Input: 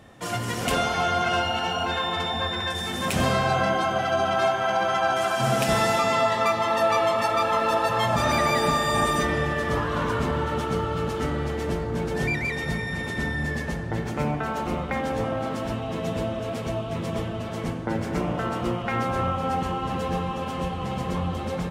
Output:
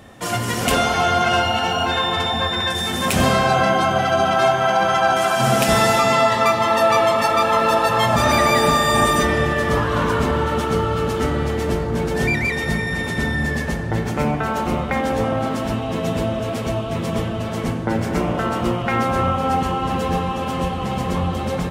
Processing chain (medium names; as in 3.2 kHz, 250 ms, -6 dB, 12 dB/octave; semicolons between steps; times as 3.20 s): treble shelf 10 kHz +5 dB; on a send: reverberation RT60 4.3 s, pre-delay 3 ms, DRR 17 dB; on the sum: trim +6 dB